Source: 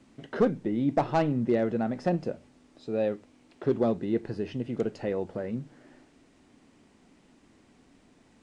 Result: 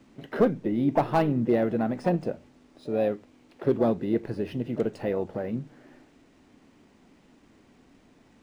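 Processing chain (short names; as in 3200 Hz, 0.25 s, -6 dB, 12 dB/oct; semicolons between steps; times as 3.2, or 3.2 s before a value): vibrato 9.7 Hz 6.8 cents; harmoniser +5 st -15 dB; decimation joined by straight lines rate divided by 3×; gain +2 dB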